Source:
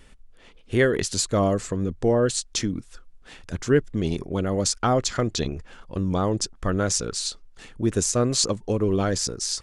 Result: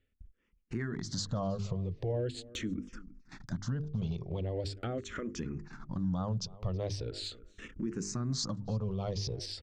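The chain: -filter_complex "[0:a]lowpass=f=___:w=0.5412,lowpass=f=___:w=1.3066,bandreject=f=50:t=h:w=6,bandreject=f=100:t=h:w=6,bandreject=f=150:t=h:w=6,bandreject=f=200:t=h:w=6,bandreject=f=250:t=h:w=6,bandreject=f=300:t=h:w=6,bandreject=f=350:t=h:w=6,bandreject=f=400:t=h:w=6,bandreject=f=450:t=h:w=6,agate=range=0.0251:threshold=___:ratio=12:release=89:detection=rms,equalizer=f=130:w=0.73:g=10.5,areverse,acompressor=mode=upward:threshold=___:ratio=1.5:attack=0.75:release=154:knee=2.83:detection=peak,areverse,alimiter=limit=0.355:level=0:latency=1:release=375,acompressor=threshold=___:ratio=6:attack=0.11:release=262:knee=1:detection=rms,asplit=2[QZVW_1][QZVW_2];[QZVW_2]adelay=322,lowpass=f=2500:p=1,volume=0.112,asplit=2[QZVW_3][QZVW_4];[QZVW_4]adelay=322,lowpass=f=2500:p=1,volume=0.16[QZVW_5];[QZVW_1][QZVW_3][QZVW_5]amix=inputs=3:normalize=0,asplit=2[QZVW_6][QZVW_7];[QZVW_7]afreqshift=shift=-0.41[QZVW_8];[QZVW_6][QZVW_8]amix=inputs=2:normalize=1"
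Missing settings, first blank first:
6000, 6000, 0.00708, 0.00398, 0.0562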